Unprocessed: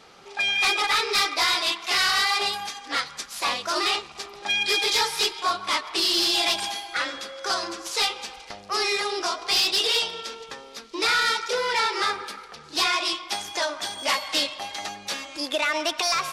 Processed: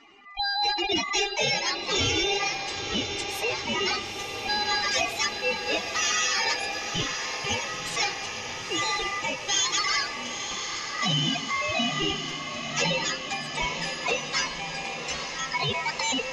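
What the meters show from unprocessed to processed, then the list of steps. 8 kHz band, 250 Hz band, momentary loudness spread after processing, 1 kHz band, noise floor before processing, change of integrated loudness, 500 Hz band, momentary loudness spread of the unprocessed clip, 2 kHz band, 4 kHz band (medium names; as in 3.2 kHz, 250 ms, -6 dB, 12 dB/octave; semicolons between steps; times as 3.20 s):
+1.5 dB, +3.0 dB, 7 LU, -3.0 dB, -45 dBFS, -3.0 dB, -1.5 dB, 12 LU, -2.0 dB, -3.5 dB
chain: spectral contrast enhancement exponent 2.3; ring modulator 1.6 kHz; echo that smears into a reverb 931 ms, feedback 72%, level -8 dB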